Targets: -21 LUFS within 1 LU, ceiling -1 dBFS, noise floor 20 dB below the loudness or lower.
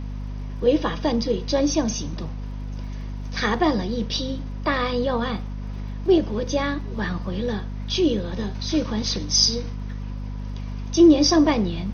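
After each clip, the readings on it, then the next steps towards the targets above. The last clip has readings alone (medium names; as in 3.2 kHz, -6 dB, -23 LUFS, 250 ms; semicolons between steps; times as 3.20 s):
tick rate 36 per s; hum 50 Hz; highest harmonic 250 Hz; hum level -28 dBFS; loudness -22.5 LUFS; peak level -4.0 dBFS; loudness target -21.0 LUFS
-> de-click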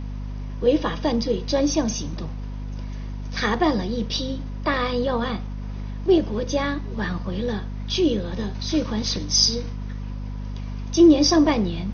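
tick rate 0.17 per s; hum 50 Hz; highest harmonic 250 Hz; hum level -28 dBFS
-> de-hum 50 Hz, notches 5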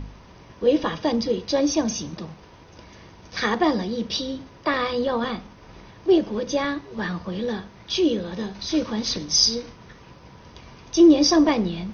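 hum not found; loudness -22.5 LUFS; peak level -5.0 dBFS; loudness target -21.0 LUFS
-> trim +1.5 dB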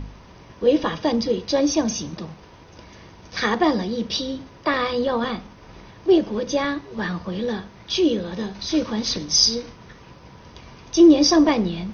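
loudness -21.0 LUFS; peak level -3.5 dBFS; noise floor -46 dBFS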